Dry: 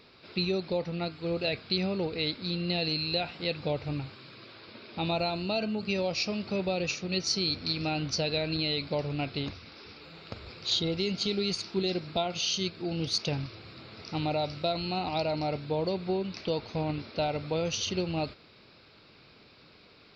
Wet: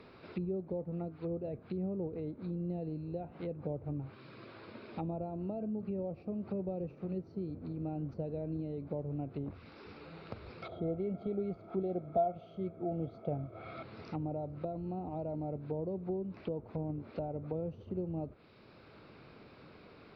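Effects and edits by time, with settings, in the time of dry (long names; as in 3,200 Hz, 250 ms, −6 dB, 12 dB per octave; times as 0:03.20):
0:05.10–0:06.22: high-frequency loss of the air 120 metres
0:10.62–0:13.83: hollow resonant body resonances 680/1,300/2,200/3,300 Hz, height 17 dB, ringing for 25 ms
whole clip: treble cut that deepens with the level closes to 540 Hz, closed at −28.5 dBFS; high-shelf EQ 2,500 Hz −11 dB; multiband upward and downward compressor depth 40%; level −5 dB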